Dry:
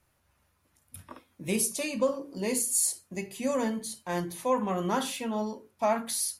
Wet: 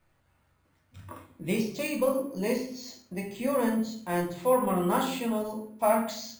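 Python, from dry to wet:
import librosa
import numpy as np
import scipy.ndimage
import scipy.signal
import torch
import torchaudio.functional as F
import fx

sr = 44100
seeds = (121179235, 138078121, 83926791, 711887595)

y = fx.high_shelf(x, sr, hz=6400.0, db=-6.5)
y = fx.room_shoebox(y, sr, seeds[0], volume_m3=79.0, walls='mixed', distance_m=0.66)
y = np.repeat(scipy.signal.resample_poly(y, 1, 4), 4)[:len(y)]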